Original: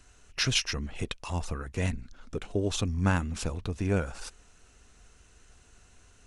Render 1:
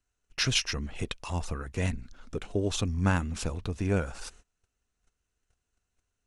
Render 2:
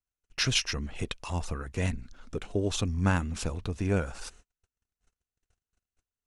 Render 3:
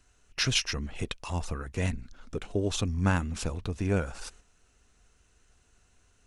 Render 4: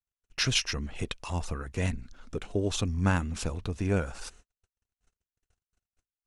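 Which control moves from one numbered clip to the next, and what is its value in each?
gate, range: -24, -39, -7, -52 dB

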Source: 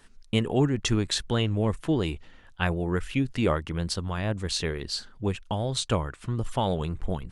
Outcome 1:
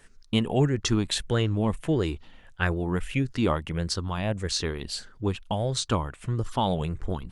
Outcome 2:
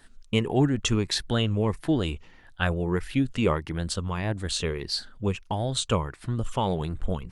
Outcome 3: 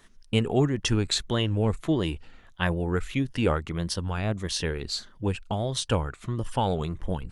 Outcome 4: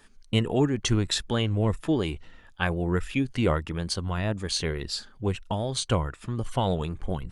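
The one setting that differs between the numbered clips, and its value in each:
moving spectral ripple, ripples per octave: 0.51, 0.79, 1.2, 2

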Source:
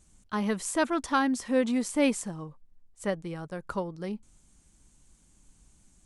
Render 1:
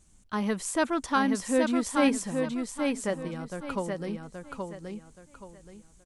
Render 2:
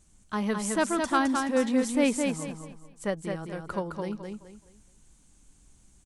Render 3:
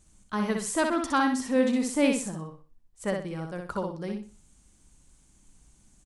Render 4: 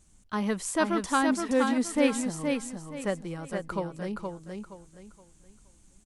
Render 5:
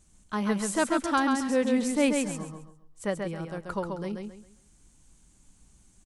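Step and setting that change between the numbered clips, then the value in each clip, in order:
feedback echo, time: 825, 213, 62, 471, 135 ms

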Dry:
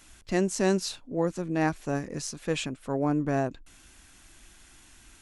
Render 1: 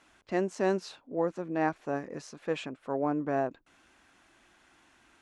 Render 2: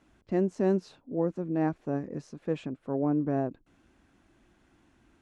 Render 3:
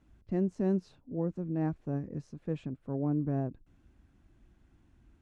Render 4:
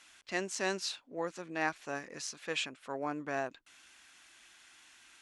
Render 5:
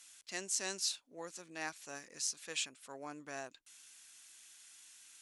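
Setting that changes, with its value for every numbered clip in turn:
band-pass, frequency: 780, 290, 110, 2400, 7400 Hz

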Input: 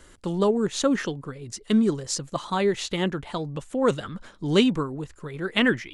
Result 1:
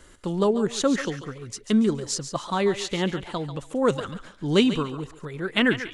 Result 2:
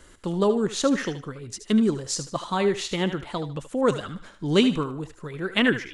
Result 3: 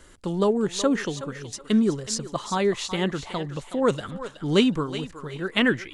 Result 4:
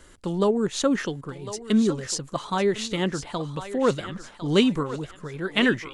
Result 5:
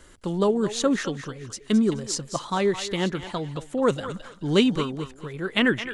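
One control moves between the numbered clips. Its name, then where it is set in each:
thinning echo, time: 141, 76, 372, 1053, 215 ms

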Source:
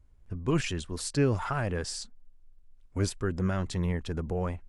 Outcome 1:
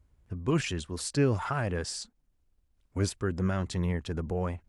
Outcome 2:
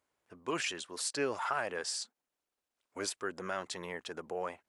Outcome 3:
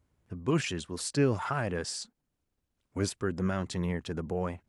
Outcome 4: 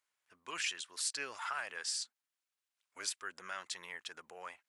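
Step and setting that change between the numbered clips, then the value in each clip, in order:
HPF, cutoff: 46, 540, 120, 1500 Hz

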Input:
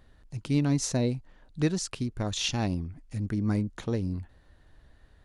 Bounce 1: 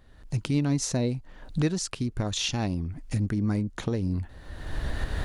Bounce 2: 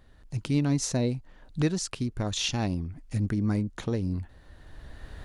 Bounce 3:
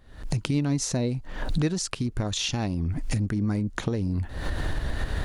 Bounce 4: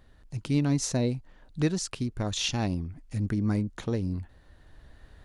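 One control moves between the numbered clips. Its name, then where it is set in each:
recorder AGC, rising by: 34, 13, 85, 5.2 dB/s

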